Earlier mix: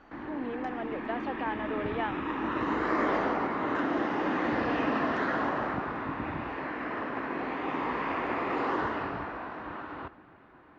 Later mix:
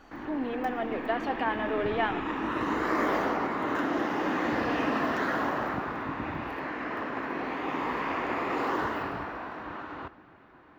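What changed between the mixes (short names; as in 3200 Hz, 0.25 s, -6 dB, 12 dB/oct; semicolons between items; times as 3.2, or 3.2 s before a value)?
speech: send on; master: remove air absorption 120 m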